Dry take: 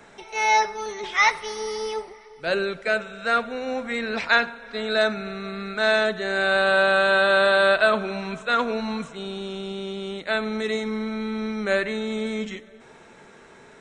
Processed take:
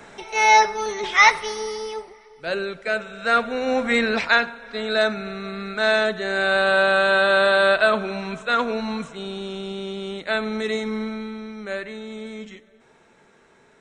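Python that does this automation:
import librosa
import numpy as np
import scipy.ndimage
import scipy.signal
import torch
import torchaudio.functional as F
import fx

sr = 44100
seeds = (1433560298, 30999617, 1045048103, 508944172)

y = fx.gain(x, sr, db=fx.line((1.38, 5.0), (1.87, -2.0), (2.8, -2.0), (3.97, 8.5), (4.35, 1.0), (11.03, 1.0), (11.45, -7.0)))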